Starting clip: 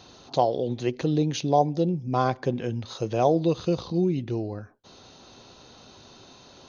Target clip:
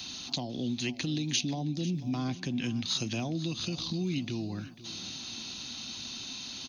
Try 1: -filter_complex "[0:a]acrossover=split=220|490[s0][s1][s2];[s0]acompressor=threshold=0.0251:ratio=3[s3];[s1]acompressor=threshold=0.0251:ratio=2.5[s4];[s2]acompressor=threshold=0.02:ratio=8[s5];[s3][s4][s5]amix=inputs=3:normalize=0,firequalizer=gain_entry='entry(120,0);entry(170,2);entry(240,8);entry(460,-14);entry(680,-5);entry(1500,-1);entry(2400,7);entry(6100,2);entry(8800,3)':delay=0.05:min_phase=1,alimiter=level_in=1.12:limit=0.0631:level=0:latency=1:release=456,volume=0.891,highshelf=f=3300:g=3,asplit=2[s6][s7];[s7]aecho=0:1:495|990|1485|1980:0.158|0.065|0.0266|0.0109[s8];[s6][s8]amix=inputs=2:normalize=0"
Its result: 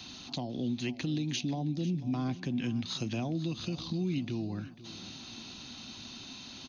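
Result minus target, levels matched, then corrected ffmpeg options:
8 kHz band -7.0 dB
-filter_complex "[0:a]acrossover=split=220|490[s0][s1][s2];[s0]acompressor=threshold=0.0251:ratio=3[s3];[s1]acompressor=threshold=0.0251:ratio=2.5[s4];[s2]acompressor=threshold=0.02:ratio=8[s5];[s3][s4][s5]amix=inputs=3:normalize=0,firequalizer=gain_entry='entry(120,0);entry(170,2);entry(240,8);entry(460,-14);entry(680,-5);entry(1500,-1);entry(2400,7);entry(6100,2);entry(8800,3)':delay=0.05:min_phase=1,alimiter=level_in=1.12:limit=0.0631:level=0:latency=1:release=456,volume=0.891,highshelf=f=3300:g=14,asplit=2[s6][s7];[s7]aecho=0:1:495|990|1485|1980:0.158|0.065|0.0266|0.0109[s8];[s6][s8]amix=inputs=2:normalize=0"

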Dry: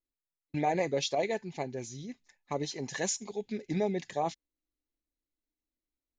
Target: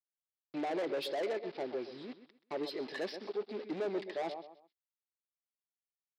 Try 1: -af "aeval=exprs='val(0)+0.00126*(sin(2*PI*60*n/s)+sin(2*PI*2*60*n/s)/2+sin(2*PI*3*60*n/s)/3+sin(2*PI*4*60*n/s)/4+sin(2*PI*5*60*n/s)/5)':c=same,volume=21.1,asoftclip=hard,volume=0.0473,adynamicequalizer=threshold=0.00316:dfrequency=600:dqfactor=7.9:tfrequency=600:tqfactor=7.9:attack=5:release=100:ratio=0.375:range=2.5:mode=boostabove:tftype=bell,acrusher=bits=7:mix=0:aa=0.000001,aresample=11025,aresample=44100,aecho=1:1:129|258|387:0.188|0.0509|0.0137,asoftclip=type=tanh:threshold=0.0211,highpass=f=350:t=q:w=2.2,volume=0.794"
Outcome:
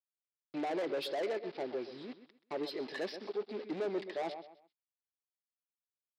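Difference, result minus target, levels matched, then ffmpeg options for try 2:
overload inside the chain: distortion +27 dB
-af "aeval=exprs='val(0)+0.00126*(sin(2*PI*60*n/s)+sin(2*PI*2*60*n/s)/2+sin(2*PI*3*60*n/s)/3+sin(2*PI*4*60*n/s)/4+sin(2*PI*5*60*n/s)/5)':c=same,volume=8.41,asoftclip=hard,volume=0.119,adynamicequalizer=threshold=0.00316:dfrequency=600:dqfactor=7.9:tfrequency=600:tqfactor=7.9:attack=5:release=100:ratio=0.375:range=2.5:mode=boostabove:tftype=bell,acrusher=bits=7:mix=0:aa=0.000001,aresample=11025,aresample=44100,aecho=1:1:129|258|387:0.188|0.0509|0.0137,asoftclip=type=tanh:threshold=0.0211,highpass=f=350:t=q:w=2.2,volume=0.794"

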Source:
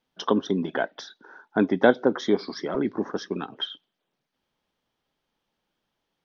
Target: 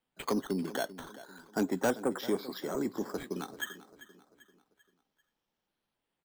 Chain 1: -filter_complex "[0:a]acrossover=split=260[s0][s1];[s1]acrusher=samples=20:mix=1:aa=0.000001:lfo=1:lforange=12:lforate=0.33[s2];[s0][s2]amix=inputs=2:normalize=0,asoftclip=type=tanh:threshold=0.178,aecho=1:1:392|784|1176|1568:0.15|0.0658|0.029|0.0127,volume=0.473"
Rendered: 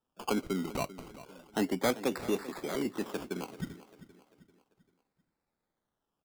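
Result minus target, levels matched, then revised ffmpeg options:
decimation with a swept rate: distortion +8 dB
-filter_complex "[0:a]acrossover=split=260[s0][s1];[s1]acrusher=samples=7:mix=1:aa=0.000001:lfo=1:lforange=4.2:lforate=0.33[s2];[s0][s2]amix=inputs=2:normalize=0,asoftclip=type=tanh:threshold=0.178,aecho=1:1:392|784|1176|1568:0.15|0.0658|0.029|0.0127,volume=0.473"

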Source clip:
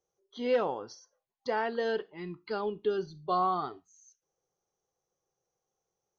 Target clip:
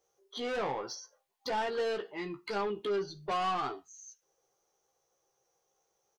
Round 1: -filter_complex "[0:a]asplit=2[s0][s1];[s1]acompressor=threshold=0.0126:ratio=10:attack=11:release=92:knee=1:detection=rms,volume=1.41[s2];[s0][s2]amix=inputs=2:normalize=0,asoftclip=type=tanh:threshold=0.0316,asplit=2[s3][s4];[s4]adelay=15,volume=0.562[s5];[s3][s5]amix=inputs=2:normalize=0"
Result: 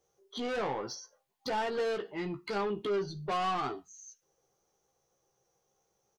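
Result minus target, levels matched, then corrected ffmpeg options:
250 Hz band +2.5 dB
-filter_complex "[0:a]asplit=2[s0][s1];[s1]acompressor=threshold=0.0126:ratio=10:attack=11:release=92:knee=1:detection=rms,highpass=310,volume=1.41[s2];[s0][s2]amix=inputs=2:normalize=0,asoftclip=type=tanh:threshold=0.0316,asplit=2[s3][s4];[s4]adelay=15,volume=0.562[s5];[s3][s5]amix=inputs=2:normalize=0"

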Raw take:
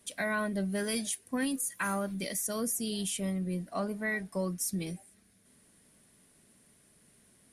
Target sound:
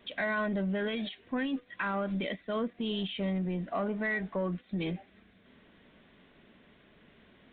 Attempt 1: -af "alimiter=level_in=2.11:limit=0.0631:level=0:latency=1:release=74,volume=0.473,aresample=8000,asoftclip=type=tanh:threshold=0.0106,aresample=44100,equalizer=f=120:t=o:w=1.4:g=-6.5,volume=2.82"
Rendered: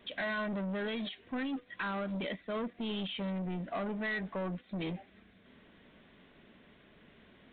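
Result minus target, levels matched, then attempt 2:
saturation: distortion +13 dB
-af "alimiter=level_in=2.11:limit=0.0631:level=0:latency=1:release=74,volume=0.473,aresample=8000,asoftclip=type=tanh:threshold=0.0316,aresample=44100,equalizer=f=120:t=o:w=1.4:g=-6.5,volume=2.82"

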